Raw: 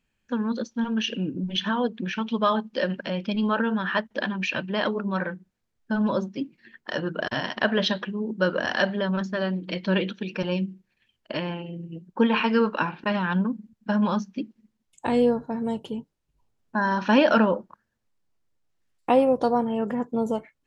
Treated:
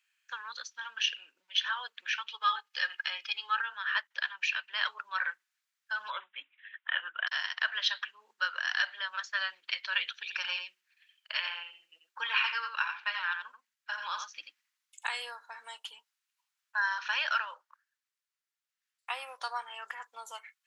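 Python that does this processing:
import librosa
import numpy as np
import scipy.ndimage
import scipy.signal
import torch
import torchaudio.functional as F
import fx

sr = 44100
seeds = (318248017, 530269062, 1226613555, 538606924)

y = fx.comb(x, sr, ms=2.4, depth=0.65, at=(2.29, 3.62))
y = fx.resample_bad(y, sr, factor=6, down='none', up='filtered', at=(6.1, 7.27))
y = fx.echo_single(y, sr, ms=87, db=-7.0, at=(10.26, 15.13), fade=0.02)
y = scipy.signal.sosfilt(scipy.signal.butter(4, 1300.0, 'highpass', fs=sr, output='sos'), y)
y = fx.rider(y, sr, range_db=3, speed_s=0.5)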